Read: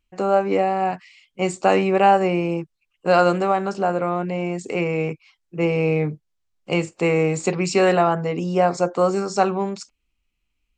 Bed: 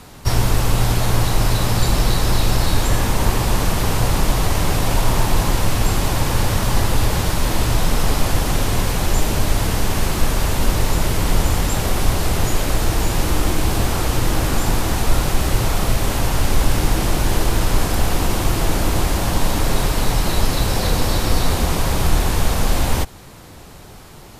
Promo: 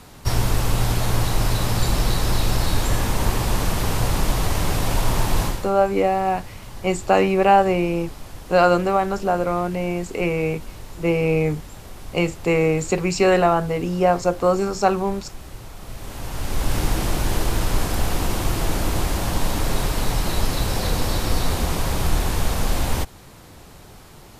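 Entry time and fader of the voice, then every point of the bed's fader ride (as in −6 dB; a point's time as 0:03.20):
5.45 s, +0.5 dB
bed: 0:05.45 −3.5 dB
0:05.73 −20 dB
0:15.76 −20 dB
0:16.77 −4 dB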